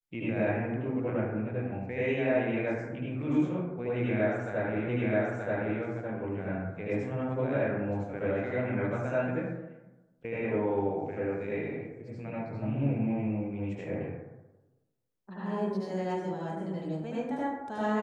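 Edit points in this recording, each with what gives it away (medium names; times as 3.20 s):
4.88 s: repeat of the last 0.93 s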